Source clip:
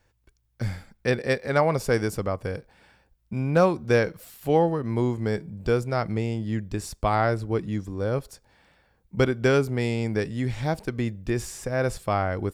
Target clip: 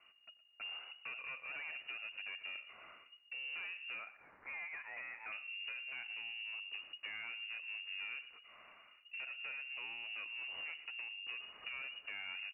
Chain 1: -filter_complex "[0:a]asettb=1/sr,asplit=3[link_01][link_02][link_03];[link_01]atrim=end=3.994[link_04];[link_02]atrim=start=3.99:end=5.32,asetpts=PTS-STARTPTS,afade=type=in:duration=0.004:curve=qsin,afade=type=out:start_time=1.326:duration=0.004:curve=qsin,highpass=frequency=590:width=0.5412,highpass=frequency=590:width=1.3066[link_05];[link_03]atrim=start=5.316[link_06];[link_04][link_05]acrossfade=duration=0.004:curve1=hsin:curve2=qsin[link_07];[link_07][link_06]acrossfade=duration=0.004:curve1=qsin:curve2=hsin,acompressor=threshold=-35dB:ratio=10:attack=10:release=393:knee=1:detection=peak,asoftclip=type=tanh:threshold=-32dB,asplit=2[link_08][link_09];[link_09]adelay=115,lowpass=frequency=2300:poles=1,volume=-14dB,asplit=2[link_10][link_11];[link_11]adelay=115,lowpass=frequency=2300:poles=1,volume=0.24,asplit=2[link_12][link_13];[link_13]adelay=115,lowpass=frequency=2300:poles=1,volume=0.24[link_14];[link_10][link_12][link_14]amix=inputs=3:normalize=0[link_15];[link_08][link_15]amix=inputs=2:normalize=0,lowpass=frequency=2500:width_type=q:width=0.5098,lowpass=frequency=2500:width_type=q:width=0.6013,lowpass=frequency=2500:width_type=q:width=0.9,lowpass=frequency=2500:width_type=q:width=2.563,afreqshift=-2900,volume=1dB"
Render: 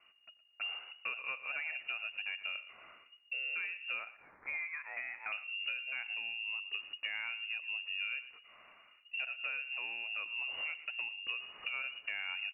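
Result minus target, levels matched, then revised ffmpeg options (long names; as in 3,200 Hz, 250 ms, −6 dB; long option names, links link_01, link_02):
soft clipping: distortion −10 dB
-filter_complex "[0:a]asettb=1/sr,asplit=3[link_01][link_02][link_03];[link_01]atrim=end=3.994[link_04];[link_02]atrim=start=3.99:end=5.32,asetpts=PTS-STARTPTS,afade=type=in:duration=0.004:curve=qsin,afade=type=out:start_time=1.326:duration=0.004:curve=qsin,highpass=frequency=590:width=0.5412,highpass=frequency=590:width=1.3066[link_05];[link_03]atrim=start=5.316[link_06];[link_04][link_05]acrossfade=duration=0.004:curve1=hsin:curve2=qsin[link_07];[link_07][link_06]acrossfade=duration=0.004:curve1=qsin:curve2=hsin,acompressor=threshold=-35dB:ratio=10:attack=10:release=393:knee=1:detection=peak,asoftclip=type=tanh:threshold=-43.5dB,asplit=2[link_08][link_09];[link_09]adelay=115,lowpass=frequency=2300:poles=1,volume=-14dB,asplit=2[link_10][link_11];[link_11]adelay=115,lowpass=frequency=2300:poles=1,volume=0.24,asplit=2[link_12][link_13];[link_13]adelay=115,lowpass=frequency=2300:poles=1,volume=0.24[link_14];[link_10][link_12][link_14]amix=inputs=3:normalize=0[link_15];[link_08][link_15]amix=inputs=2:normalize=0,lowpass=frequency=2500:width_type=q:width=0.5098,lowpass=frequency=2500:width_type=q:width=0.6013,lowpass=frequency=2500:width_type=q:width=0.9,lowpass=frequency=2500:width_type=q:width=2.563,afreqshift=-2900,volume=1dB"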